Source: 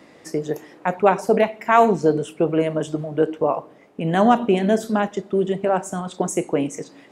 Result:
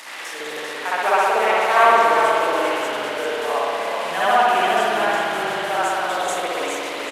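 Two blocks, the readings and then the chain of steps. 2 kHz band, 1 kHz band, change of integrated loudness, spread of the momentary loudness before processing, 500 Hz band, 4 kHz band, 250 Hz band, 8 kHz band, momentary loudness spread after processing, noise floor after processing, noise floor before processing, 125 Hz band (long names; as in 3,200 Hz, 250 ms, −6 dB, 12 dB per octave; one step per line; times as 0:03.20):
+9.5 dB, +5.0 dB, +1.5 dB, 12 LU, −1.5 dB, +11.5 dB, −11.5 dB, +2.5 dB, 11 LU, −32 dBFS, −49 dBFS, below −15 dB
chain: linear delta modulator 64 kbit/s, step −28 dBFS
high-pass filter 1,000 Hz 12 dB per octave
on a send: echo with shifted repeats 396 ms, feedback 48%, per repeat −39 Hz, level −7.5 dB
on the sum: spring reverb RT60 2.6 s, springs 60 ms, chirp 40 ms, DRR −10 dB
level −1.5 dB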